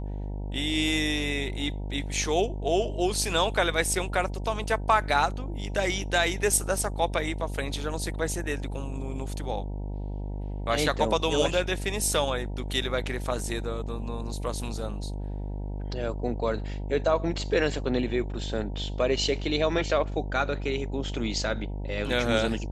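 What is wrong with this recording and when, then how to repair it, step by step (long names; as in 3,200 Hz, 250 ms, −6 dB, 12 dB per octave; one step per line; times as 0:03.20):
mains buzz 50 Hz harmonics 19 −33 dBFS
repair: hum removal 50 Hz, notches 19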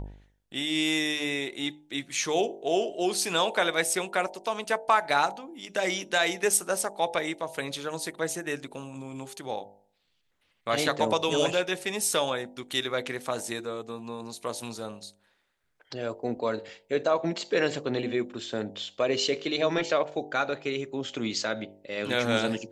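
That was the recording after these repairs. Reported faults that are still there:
none of them is left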